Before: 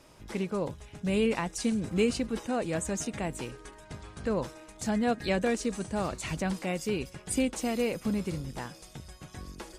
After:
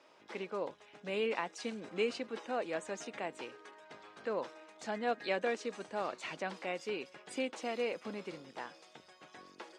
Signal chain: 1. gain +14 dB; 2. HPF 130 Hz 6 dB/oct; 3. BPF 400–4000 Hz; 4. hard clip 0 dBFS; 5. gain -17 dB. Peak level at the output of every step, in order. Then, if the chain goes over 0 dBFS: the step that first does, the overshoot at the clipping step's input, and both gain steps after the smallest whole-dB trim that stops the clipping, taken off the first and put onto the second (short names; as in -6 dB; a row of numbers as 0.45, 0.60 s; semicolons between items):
-1.0, -0.5, -2.5, -2.5, -19.5 dBFS; no overload